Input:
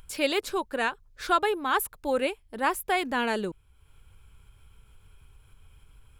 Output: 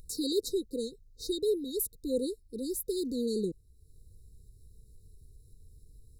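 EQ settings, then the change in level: brick-wall FIR band-stop 520–3700 Hz; 0.0 dB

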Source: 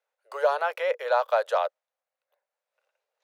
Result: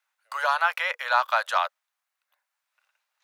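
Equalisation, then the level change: high-pass 990 Hz 24 dB/octave; +8.0 dB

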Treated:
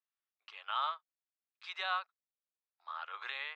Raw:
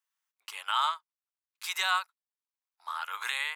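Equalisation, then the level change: dynamic bell 500 Hz, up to +6 dB, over -43 dBFS, Q 0.71; cabinet simulation 320–3600 Hz, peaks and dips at 940 Hz -9 dB, 1.5 kHz -4 dB, 2.1 kHz -5 dB, 3 kHz -4 dB; -4.5 dB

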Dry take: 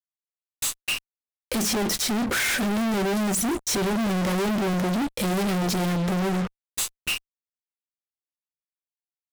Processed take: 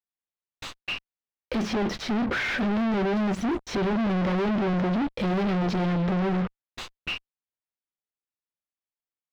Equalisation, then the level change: distance through air 250 m; 0.0 dB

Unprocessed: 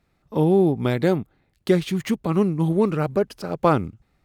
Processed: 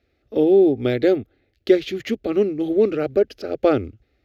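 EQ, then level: boxcar filter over 5 samples; high-pass 52 Hz; static phaser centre 410 Hz, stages 4; +5.0 dB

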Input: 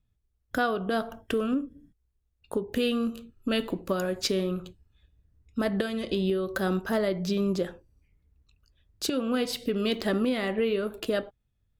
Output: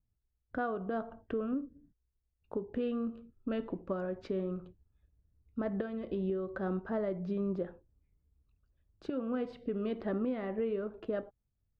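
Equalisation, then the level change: low-pass 1.3 kHz 12 dB/octave; -7.0 dB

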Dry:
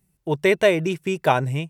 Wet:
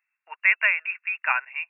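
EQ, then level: inverse Chebyshev high-pass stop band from 200 Hz, stop band 80 dB; brick-wall FIR low-pass 2.8 kHz; tilt EQ +3.5 dB/octave; +2.0 dB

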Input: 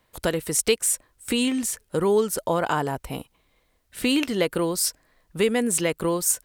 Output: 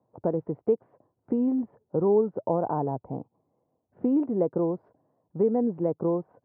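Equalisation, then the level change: Chebyshev band-pass 110–850 Hz, order 3; distance through air 330 m; 0.0 dB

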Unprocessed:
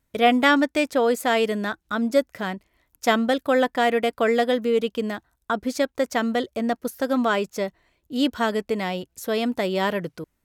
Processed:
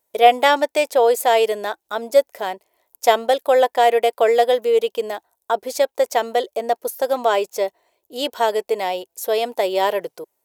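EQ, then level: RIAA curve recording; dynamic bell 2.6 kHz, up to +5 dB, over -37 dBFS, Q 0.77; high-order bell 590 Hz +14.5 dB; -6.5 dB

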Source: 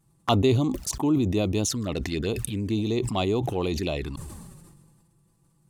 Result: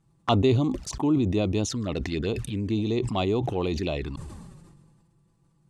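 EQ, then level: distance through air 74 m; 0.0 dB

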